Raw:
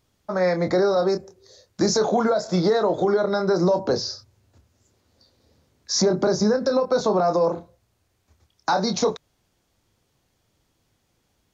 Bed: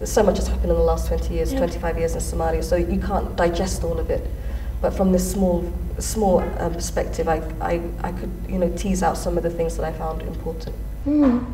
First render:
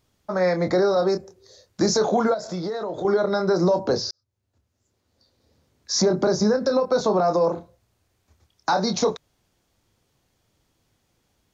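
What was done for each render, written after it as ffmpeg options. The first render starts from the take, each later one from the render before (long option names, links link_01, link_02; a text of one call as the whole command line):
ffmpeg -i in.wav -filter_complex "[0:a]asettb=1/sr,asplit=3[link_01][link_02][link_03];[link_01]atrim=end=2.344[link_04];[link_02]atrim=start=2.34:end=3.05,asetpts=PTS-STARTPTS,afade=type=in:duration=0.004:curve=qsin,afade=type=out:start_time=0.706:duration=0.004:curve=qsin,acompressor=threshold=-28dB:ratio=3:attack=3.2:release=140:knee=1:detection=peak[link_05];[link_03]atrim=start=3.046[link_06];[link_04][link_05]acrossfade=duration=0.004:curve1=hsin:curve2=qsin[link_07];[link_07][link_06]acrossfade=duration=0.004:curve1=qsin:curve2=hsin,asplit=2[link_08][link_09];[link_08]atrim=end=4.11,asetpts=PTS-STARTPTS,afade=type=out:start_time=4.106:duration=0.004:curve=hsin[link_10];[link_09]atrim=start=4.11,asetpts=PTS-STARTPTS,afade=type=in:duration=1.95[link_11];[link_10][link_11]concat=n=2:v=0:a=1" out.wav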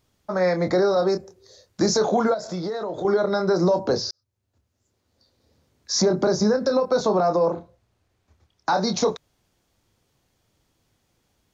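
ffmpeg -i in.wav -filter_complex "[0:a]asettb=1/sr,asplit=3[link_01][link_02][link_03];[link_01]atrim=end=7.284[link_04];[link_02]atrim=start=7.28:end=8.74,asetpts=PTS-STARTPTS,afade=type=in:duration=0.004:curve=qsin,afade=type=out:start_time=1.456:duration=0.004:curve=qsin,lowpass=frequency=4000:poles=1[link_05];[link_03]atrim=start=8.736[link_06];[link_04][link_05]acrossfade=duration=0.004:curve1=hsin:curve2=qsin[link_07];[link_07][link_06]acrossfade=duration=0.004:curve1=qsin:curve2=hsin" out.wav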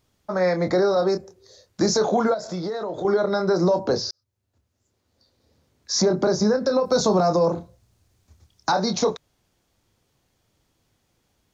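ffmpeg -i in.wav -filter_complex "[0:a]asettb=1/sr,asplit=3[link_01][link_02][link_03];[link_01]atrim=end=6.854[link_04];[link_02]atrim=start=6.85:end=8.72,asetpts=PTS-STARTPTS,afade=type=in:duration=0.004:curve=qsin,afade=type=out:start_time=1.866:duration=0.004:curve=qsin,bass=frequency=250:gain=7,treble=frequency=4000:gain=11[link_05];[link_03]atrim=start=8.716[link_06];[link_04][link_05]acrossfade=duration=0.004:curve1=hsin:curve2=qsin[link_07];[link_07][link_06]acrossfade=duration=0.004:curve1=qsin:curve2=hsin" out.wav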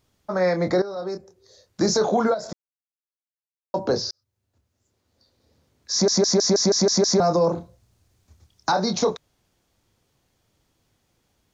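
ffmpeg -i in.wav -filter_complex "[0:a]asplit=12[link_01][link_02][link_03][link_04][link_05][link_06][link_07][link_08][link_09][link_10][link_11][link_12];[link_01]atrim=end=0.82,asetpts=PTS-STARTPTS,afade=type=out:start_time=0.816:duration=0.004:curve=hsin:silence=0.177828[link_13];[link_02]atrim=start=0.82:end=2.53,asetpts=PTS-STARTPTS,afade=type=in:duration=1.07:silence=0.177828,afade=type=out:start_time=1.706:duration=0.004:curve=hsin[link_14];[link_03]atrim=start=2.53:end=3.74,asetpts=PTS-STARTPTS,volume=0[link_15];[link_04]atrim=start=3.74:end=6.082,asetpts=PTS-STARTPTS,afade=type=in:duration=0.004:curve=hsin[link_16];[link_05]atrim=start=5.918:end=6.082[link_17];[link_06]atrim=start=5.918:end=6.082[link_18];[link_07]atrim=start=5.918:end=6.082[link_19];[link_08]atrim=start=5.918:end=6.082[link_20];[link_09]atrim=start=5.918:end=6.082[link_21];[link_10]atrim=start=5.918:end=6.082[link_22];[link_11]atrim=start=5.918:end=6.082[link_23];[link_12]atrim=start=7.198[link_24];[link_13][link_14][link_15][link_16]concat=n=4:v=0:a=1[link_25];[link_25][link_17]acrossfade=duration=0.004:curve1=hsin:curve2=hsin[link_26];[link_26][link_18]acrossfade=duration=0.004:curve1=hsin:curve2=hsin[link_27];[link_27][link_19]acrossfade=duration=0.004:curve1=hsin:curve2=hsin[link_28];[link_28][link_20]acrossfade=duration=0.004:curve1=hsin:curve2=hsin[link_29];[link_29][link_21]acrossfade=duration=0.004:curve1=hsin:curve2=hsin[link_30];[link_30][link_22]acrossfade=duration=0.004:curve1=hsin:curve2=hsin[link_31];[link_31][link_23]acrossfade=duration=0.004:curve1=hsin:curve2=hsin[link_32];[link_32][link_24]acrossfade=duration=0.004:curve1=hsin:curve2=hsin" out.wav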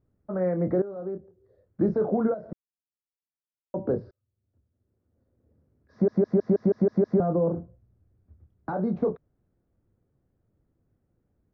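ffmpeg -i in.wav -af "lowpass=frequency=1300:width=0.5412,lowpass=frequency=1300:width=1.3066,equalizer=frequency=960:width_type=o:width=1.3:gain=-14.5" out.wav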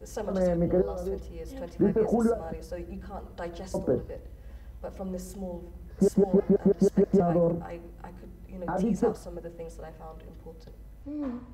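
ffmpeg -i in.wav -i bed.wav -filter_complex "[1:a]volume=-17.5dB[link_01];[0:a][link_01]amix=inputs=2:normalize=0" out.wav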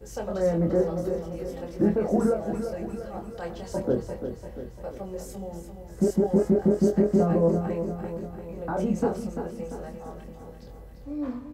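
ffmpeg -i in.wav -filter_complex "[0:a]asplit=2[link_01][link_02];[link_02]adelay=24,volume=-4.5dB[link_03];[link_01][link_03]amix=inputs=2:normalize=0,aecho=1:1:344|688|1032|1376|1720|2064|2408:0.376|0.207|0.114|0.0625|0.0344|0.0189|0.0104" out.wav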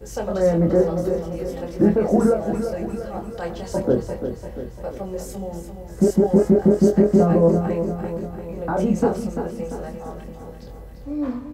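ffmpeg -i in.wav -af "volume=6dB" out.wav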